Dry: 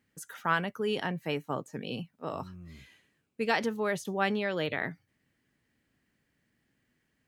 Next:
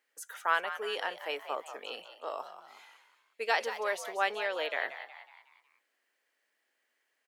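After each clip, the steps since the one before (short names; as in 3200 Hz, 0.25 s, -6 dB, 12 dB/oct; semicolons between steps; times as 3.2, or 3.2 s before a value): HPF 480 Hz 24 dB/oct; on a send: frequency-shifting echo 0.184 s, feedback 47%, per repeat +83 Hz, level -11.5 dB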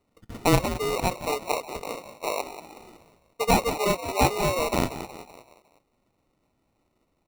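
steep low-pass 2800 Hz 72 dB/oct; sample-and-hold 27×; gain +9 dB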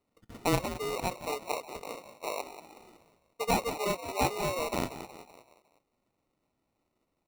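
low shelf 120 Hz -5 dB; gain -6.5 dB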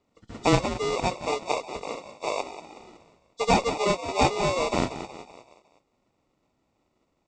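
nonlinear frequency compression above 3000 Hz 1.5:1; Chebyshev low-pass 7800 Hz, order 5; added harmonics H 6 -32 dB, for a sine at -12 dBFS; gain +7 dB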